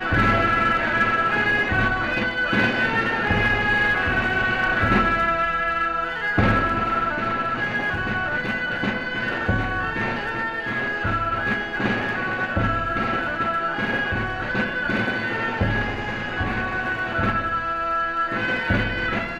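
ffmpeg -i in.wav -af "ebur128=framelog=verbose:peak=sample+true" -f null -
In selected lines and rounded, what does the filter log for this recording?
Integrated loudness:
  I:         -21.9 LUFS
  Threshold: -31.9 LUFS
Loudness range:
  LRA:         4.1 LU
  Threshold: -42.1 LUFS
  LRA low:   -24.0 LUFS
  LRA high:  -19.9 LUFS
Sample peak:
  Peak:       -7.2 dBFS
True peak:
  Peak:       -7.2 dBFS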